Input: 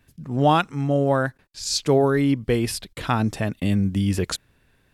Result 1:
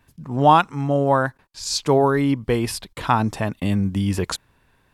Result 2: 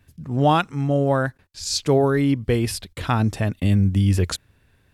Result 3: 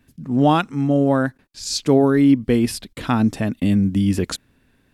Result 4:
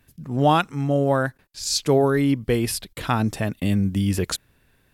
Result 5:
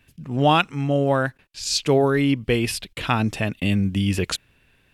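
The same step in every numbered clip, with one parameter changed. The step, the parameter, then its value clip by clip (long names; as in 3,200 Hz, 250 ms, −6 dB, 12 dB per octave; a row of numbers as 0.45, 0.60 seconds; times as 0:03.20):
parametric band, centre frequency: 970, 86, 250, 15,000, 2,700 Hertz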